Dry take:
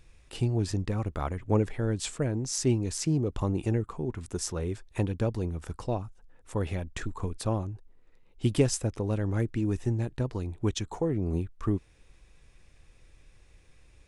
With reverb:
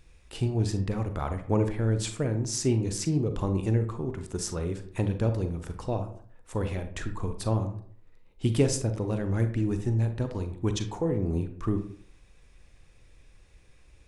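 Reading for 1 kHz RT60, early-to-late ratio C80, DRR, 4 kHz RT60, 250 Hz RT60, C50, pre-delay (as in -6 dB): 0.55 s, 14.5 dB, 7.5 dB, 0.30 s, 0.55 s, 9.5 dB, 34 ms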